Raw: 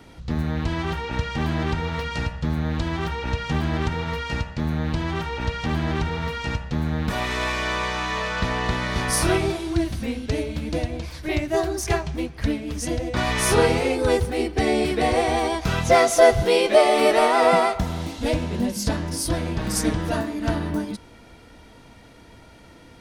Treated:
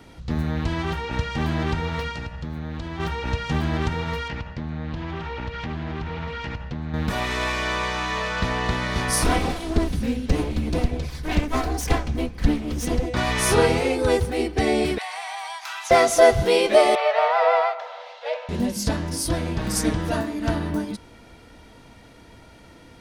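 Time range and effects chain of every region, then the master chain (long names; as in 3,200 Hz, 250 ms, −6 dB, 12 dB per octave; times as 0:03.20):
0:02.11–0:03.00: parametric band 10,000 Hz −4.5 dB 1.4 octaves + downward compressor 2.5 to 1, threshold −30 dBFS
0:04.28–0:06.94: downward compressor 4 to 1, threshold −26 dBFS + high-frequency loss of the air 120 metres + highs frequency-modulated by the lows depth 0.21 ms
0:09.24–0:13.06: lower of the sound and its delayed copy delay 4 ms + low-shelf EQ 200 Hz +8.5 dB
0:14.98–0:15.91: elliptic high-pass filter 830 Hz, stop band 70 dB + downward compressor 4 to 1, threshold −29 dBFS
0:16.95–0:18.49: Butterworth high-pass 480 Hz 96 dB per octave + high-frequency loss of the air 250 metres
whole clip: no processing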